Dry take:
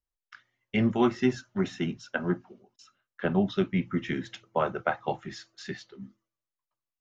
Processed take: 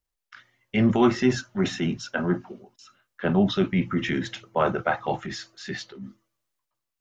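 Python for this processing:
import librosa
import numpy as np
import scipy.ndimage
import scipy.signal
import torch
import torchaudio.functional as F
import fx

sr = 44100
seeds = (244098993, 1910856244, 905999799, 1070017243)

y = fx.transient(x, sr, attack_db=-4, sustain_db=5)
y = y * 10.0 ** (5.5 / 20.0)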